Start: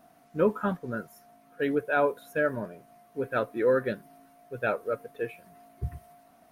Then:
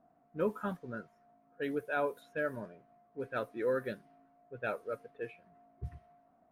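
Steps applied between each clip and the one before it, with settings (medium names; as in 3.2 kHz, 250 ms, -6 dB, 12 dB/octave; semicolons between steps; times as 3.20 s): level-controlled noise filter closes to 1 kHz, open at -24 dBFS; treble shelf 4 kHz +6 dB; trim -8.5 dB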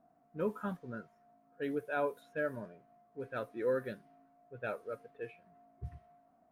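harmonic-percussive split percussive -4 dB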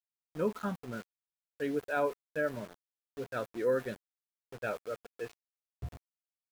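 small samples zeroed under -48 dBFS; trim +3 dB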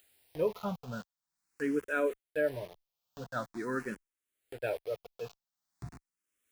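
upward compressor, threshold -46 dBFS; barber-pole phaser +0.45 Hz; trim +3.5 dB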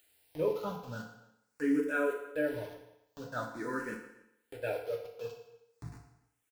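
echo from a far wall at 49 m, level -23 dB; FDN reverb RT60 0.82 s, low-frequency decay 0.75×, high-frequency decay 0.95×, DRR 0.5 dB; trim -3 dB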